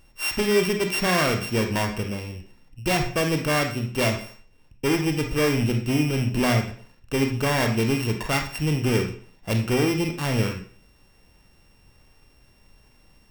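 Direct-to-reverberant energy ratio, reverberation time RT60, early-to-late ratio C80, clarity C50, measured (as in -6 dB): 3.0 dB, 0.45 s, 11.5 dB, 7.0 dB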